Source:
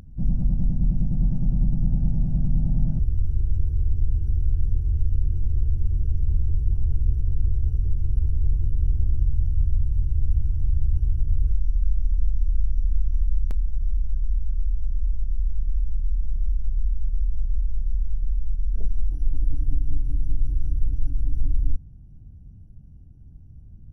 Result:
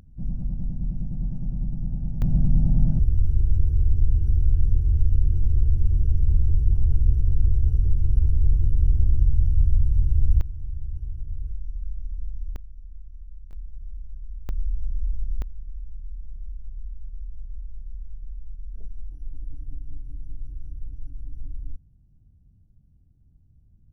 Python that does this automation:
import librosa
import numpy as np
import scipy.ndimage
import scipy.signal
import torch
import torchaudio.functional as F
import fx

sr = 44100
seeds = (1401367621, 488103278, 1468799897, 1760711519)

y = fx.gain(x, sr, db=fx.steps((0.0, -6.5), (2.22, 2.5), (10.41, -10.0), (12.56, -19.5), (13.53, -13.0), (14.49, -2.5), (15.42, -12.0)))